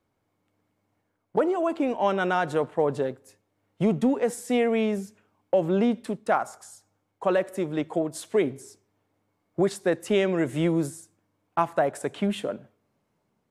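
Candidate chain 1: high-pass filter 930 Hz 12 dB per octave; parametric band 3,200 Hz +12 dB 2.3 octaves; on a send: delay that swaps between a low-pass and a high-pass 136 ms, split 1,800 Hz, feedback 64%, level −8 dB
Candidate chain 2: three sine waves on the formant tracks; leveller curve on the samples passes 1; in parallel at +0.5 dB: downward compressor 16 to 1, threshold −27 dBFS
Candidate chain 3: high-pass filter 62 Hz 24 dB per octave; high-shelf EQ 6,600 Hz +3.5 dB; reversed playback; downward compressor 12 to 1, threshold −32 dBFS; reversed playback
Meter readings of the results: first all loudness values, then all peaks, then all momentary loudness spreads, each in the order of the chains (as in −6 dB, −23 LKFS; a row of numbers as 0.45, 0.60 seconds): −28.5, −21.0, −37.5 LKFS; −8.0, −6.5, −21.0 dBFS; 16, 8, 9 LU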